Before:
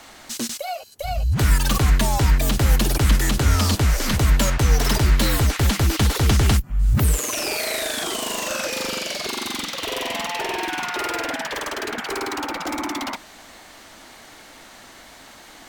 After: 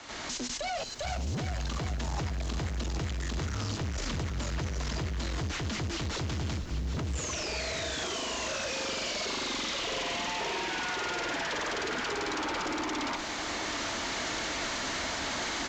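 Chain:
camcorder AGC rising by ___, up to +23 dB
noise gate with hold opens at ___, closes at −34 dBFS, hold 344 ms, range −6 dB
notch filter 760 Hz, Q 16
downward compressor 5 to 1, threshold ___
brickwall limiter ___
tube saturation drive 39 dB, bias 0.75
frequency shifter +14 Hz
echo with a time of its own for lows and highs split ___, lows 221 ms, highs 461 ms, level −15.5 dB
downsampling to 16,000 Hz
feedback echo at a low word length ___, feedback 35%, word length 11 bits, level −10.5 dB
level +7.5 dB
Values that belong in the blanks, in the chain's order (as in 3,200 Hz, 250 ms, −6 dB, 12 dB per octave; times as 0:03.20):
14 dB per second, −33 dBFS, −23 dBFS, −23.5 dBFS, 410 Hz, 775 ms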